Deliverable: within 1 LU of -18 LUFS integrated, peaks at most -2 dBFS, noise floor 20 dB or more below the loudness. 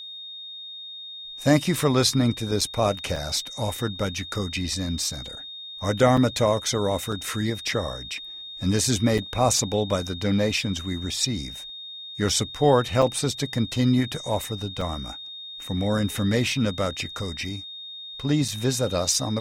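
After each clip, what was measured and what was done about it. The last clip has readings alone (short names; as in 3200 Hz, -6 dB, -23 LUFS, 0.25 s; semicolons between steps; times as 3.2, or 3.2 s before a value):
dropouts 8; longest dropout 4.3 ms; steady tone 3700 Hz; tone level -36 dBFS; loudness -24.5 LUFS; peak -6.0 dBFS; loudness target -18.0 LUFS
-> interpolate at 2.61/3.16/6.17/7.12/9.18/13.02/14.81/18.48, 4.3 ms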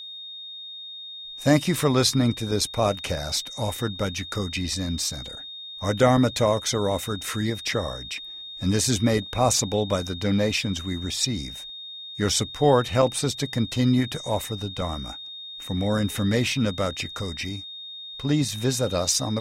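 dropouts 0; steady tone 3700 Hz; tone level -36 dBFS
-> notch 3700 Hz, Q 30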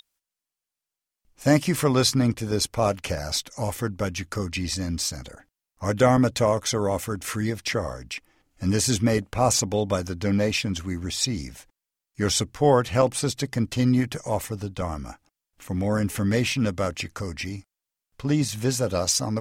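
steady tone none; loudness -24.5 LUFS; peak -6.0 dBFS; loudness target -18.0 LUFS
-> gain +6.5 dB; limiter -2 dBFS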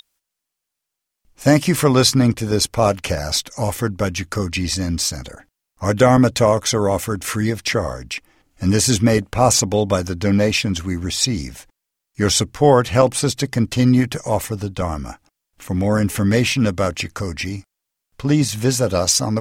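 loudness -18.5 LUFS; peak -2.0 dBFS; noise floor -81 dBFS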